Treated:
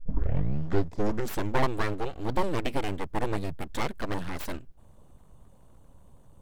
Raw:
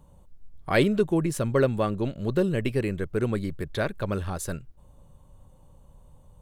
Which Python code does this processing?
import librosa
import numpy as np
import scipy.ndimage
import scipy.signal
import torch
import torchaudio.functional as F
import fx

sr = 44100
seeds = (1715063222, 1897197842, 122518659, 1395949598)

y = fx.tape_start_head(x, sr, length_s=1.65)
y = np.abs(y)